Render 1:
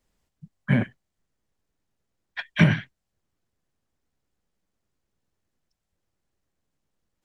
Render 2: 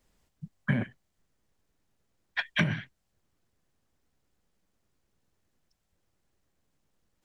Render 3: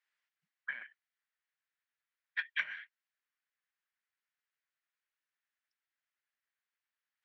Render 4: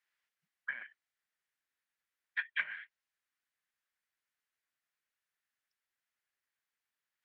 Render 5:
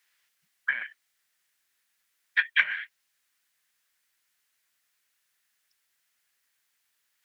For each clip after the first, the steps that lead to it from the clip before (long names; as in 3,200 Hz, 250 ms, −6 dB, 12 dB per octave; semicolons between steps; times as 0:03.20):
downward compressor 10 to 1, threshold −27 dBFS, peak gain reduction 16 dB; level +3.5 dB
four-pole ladder band-pass 2,100 Hz, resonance 40%; level +3 dB
treble cut that deepens with the level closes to 2,700 Hz, closed at −37 dBFS; level +1 dB
high-shelf EQ 2,200 Hz +10.5 dB; level +7.5 dB